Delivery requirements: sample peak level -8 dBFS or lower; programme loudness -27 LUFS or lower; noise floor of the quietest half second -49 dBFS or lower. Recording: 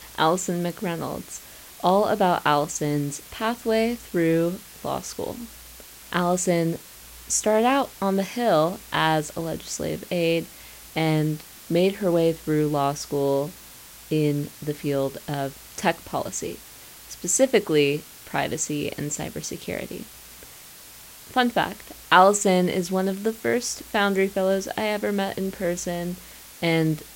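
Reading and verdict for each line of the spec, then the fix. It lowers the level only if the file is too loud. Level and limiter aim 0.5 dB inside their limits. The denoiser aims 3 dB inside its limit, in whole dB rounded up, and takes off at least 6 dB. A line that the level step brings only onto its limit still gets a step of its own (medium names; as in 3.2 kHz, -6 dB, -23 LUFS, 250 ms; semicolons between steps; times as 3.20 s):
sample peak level -2.0 dBFS: fail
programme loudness -24.0 LUFS: fail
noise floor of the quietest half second -45 dBFS: fail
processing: noise reduction 6 dB, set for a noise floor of -45 dBFS; trim -3.5 dB; peak limiter -8.5 dBFS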